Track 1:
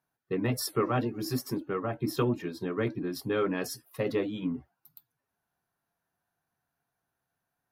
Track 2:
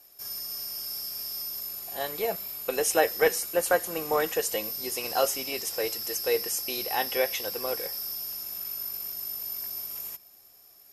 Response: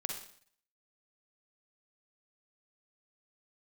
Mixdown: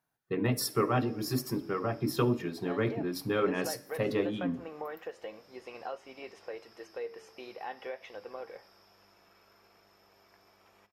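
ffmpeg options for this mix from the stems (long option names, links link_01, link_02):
-filter_complex "[0:a]lowshelf=frequency=150:gain=9.5,bandreject=frequency=46.77:width_type=h:width=4,bandreject=frequency=93.54:width_type=h:width=4,bandreject=frequency=140.31:width_type=h:width=4,bandreject=frequency=187.08:width_type=h:width=4,bandreject=frequency=233.85:width_type=h:width=4,bandreject=frequency=280.62:width_type=h:width=4,bandreject=frequency=327.39:width_type=h:width=4,bandreject=frequency=374.16:width_type=h:width=4,bandreject=frequency=420.93:width_type=h:width=4,bandreject=frequency=467.7:width_type=h:width=4,bandreject=frequency=514.47:width_type=h:width=4,bandreject=frequency=561.24:width_type=h:width=4,bandreject=frequency=608.01:width_type=h:width=4,volume=-1dB,afade=type=out:start_time=4.45:duration=0.28:silence=0.375837,asplit=2[link_01][link_02];[link_02]volume=-13.5dB[link_03];[1:a]lowpass=1900,acompressor=threshold=-30dB:ratio=3,flanger=delay=8.2:depth=5.5:regen=88:speed=0.38:shape=triangular,adelay=700,volume=-2dB[link_04];[2:a]atrim=start_sample=2205[link_05];[link_03][link_05]afir=irnorm=-1:irlink=0[link_06];[link_01][link_04][link_06]amix=inputs=3:normalize=0,lowshelf=frequency=190:gain=-8"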